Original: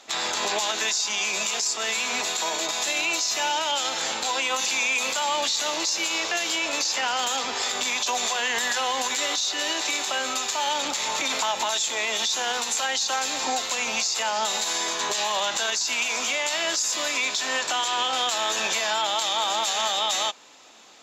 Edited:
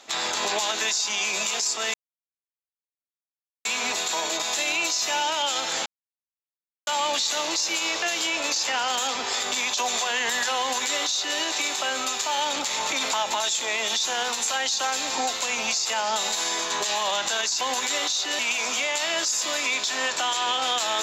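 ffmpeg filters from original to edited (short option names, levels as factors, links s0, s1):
-filter_complex "[0:a]asplit=6[s0][s1][s2][s3][s4][s5];[s0]atrim=end=1.94,asetpts=PTS-STARTPTS,afade=t=out:st=1.936:d=0.004:c=hsin,apad=pad_dur=1.71[s6];[s1]atrim=start=1.94:end=4.15,asetpts=PTS-STARTPTS,afade=t=in:d=0.004:c=hsin,afade=t=out:st=2.206:d=0.004:c=hsin[s7];[s2]atrim=start=4.15:end=5.16,asetpts=PTS-STARTPTS,volume=0[s8];[s3]atrim=start=5.16:end=15.902,asetpts=PTS-STARTPTS,afade=t=in:d=0.004:c=hsin[s9];[s4]atrim=start=8.888:end=9.672[s10];[s5]atrim=start=15.898[s11];[s6][s7][s8][s9]concat=n=4:v=0:a=1[s12];[s12][s10]acrossfade=d=0.004:c1=hsin:c2=hsin[s13];[s13][s11]acrossfade=d=0.004:c1=hsin:c2=hsin"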